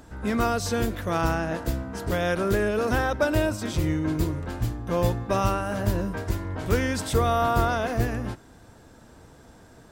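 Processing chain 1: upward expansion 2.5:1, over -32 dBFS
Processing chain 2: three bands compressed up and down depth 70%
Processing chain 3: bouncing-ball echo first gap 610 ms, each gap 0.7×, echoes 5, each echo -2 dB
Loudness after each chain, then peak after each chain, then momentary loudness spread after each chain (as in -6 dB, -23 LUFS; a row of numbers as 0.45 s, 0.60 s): -33.0 LUFS, -25.5 LUFS, -22.5 LUFS; -10.0 dBFS, -8.5 dBFS, -7.0 dBFS; 13 LU, 12 LU, 5 LU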